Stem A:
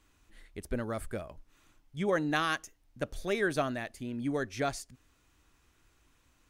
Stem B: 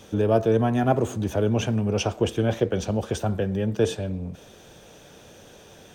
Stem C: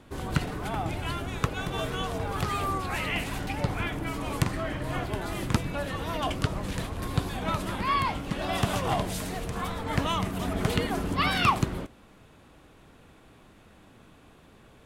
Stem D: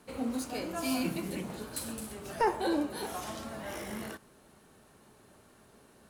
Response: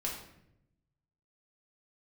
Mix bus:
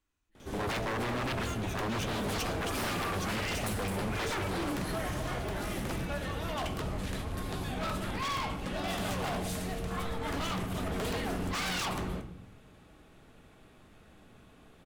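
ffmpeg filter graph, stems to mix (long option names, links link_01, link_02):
-filter_complex "[0:a]volume=-15.5dB[link_01];[1:a]bandreject=frequency=54.05:width_type=h:width=4,bandreject=frequency=108.1:width_type=h:width=4,bandreject=frequency=162.15:width_type=h:width=4,adelay=400,volume=-5.5dB[link_02];[2:a]bandreject=frequency=1000:width=12,volume=18.5dB,asoftclip=hard,volume=-18.5dB,adelay=350,volume=-7dB,asplit=2[link_03][link_04];[link_04]volume=-5dB[link_05];[3:a]adelay=1900,volume=-2.5dB[link_06];[4:a]atrim=start_sample=2205[link_07];[link_05][link_07]afir=irnorm=-1:irlink=0[link_08];[link_01][link_02][link_03][link_06][link_08]amix=inputs=5:normalize=0,aeval=exprs='0.0398*(abs(mod(val(0)/0.0398+3,4)-2)-1)':channel_layout=same"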